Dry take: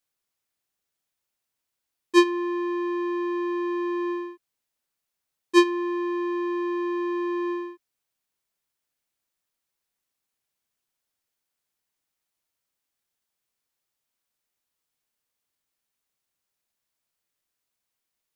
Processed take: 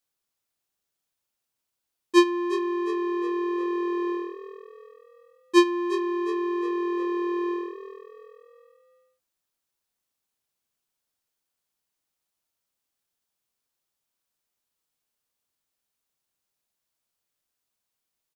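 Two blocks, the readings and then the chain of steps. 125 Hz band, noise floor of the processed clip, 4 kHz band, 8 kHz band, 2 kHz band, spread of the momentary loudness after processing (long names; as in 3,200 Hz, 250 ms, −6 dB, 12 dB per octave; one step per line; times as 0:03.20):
can't be measured, −83 dBFS, 0.0 dB, 0.0 dB, −2.0 dB, 18 LU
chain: parametric band 2,000 Hz −3 dB 0.69 octaves
echo with shifted repeats 358 ms, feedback 46%, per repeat +41 Hz, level −14 dB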